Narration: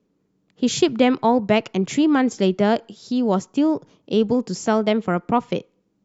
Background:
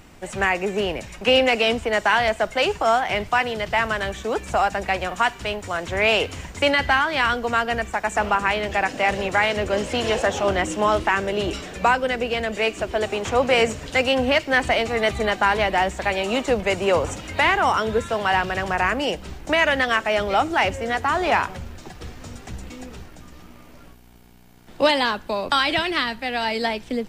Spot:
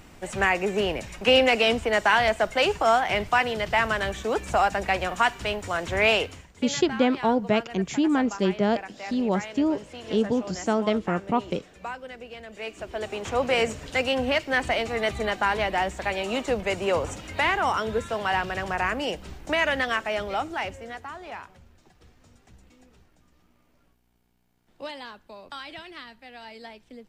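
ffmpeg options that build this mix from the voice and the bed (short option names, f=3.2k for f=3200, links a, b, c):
-filter_complex "[0:a]adelay=6000,volume=-5dB[a];[1:a]volume=10.5dB,afade=t=out:st=6.08:d=0.38:silence=0.16788,afade=t=in:st=12.47:d=0.97:silence=0.251189,afade=t=out:st=19.82:d=1.37:silence=0.199526[b];[a][b]amix=inputs=2:normalize=0"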